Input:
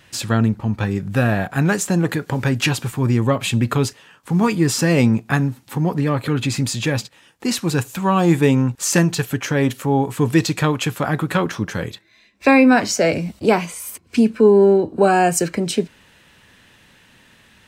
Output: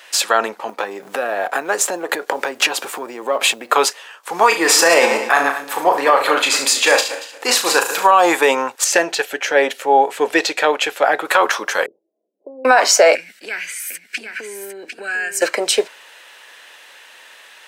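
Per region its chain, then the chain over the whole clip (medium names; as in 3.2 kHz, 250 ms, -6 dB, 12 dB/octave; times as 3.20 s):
0.69–3.73 s: companding laws mixed up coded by A + peaking EQ 260 Hz +10 dB 2.9 oct + compression 12:1, threshold -18 dBFS
4.48–8.11 s: backward echo that repeats 116 ms, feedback 45%, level -10 dB + flutter echo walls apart 6.2 m, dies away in 0.3 s
8.84–11.25 s: low-pass 2.9 kHz 6 dB/octave + peaking EQ 1.1 kHz -12 dB 0.58 oct
11.86–12.65 s: compression, threshold -23 dBFS + Gaussian low-pass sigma 21 samples + loudspeaker Doppler distortion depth 0.11 ms
13.15–15.42 s: FFT filter 200 Hz 0 dB, 630 Hz -20 dB, 1.1 kHz -22 dB, 1.6 kHz +6 dB, 3.5 kHz -6 dB + compression 12:1, threshold -26 dBFS + delay 751 ms -7.5 dB
whole clip: dynamic bell 930 Hz, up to +6 dB, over -29 dBFS, Q 0.73; high-pass 500 Hz 24 dB/octave; loudness maximiser +10.5 dB; trim -1 dB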